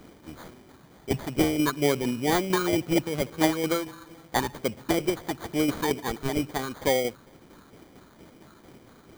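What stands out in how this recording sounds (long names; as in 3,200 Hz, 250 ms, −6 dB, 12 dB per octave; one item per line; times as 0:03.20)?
a quantiser's noise floor 10 bits, dither triangular
tremolo saw down 4.4 Hz, depth 45%
phaser sweep stages 12, 2.2 Hz, lowest notch 710–2,000 Hz
aliases and images of a low sample rate 2,700 Hz, jitter 0%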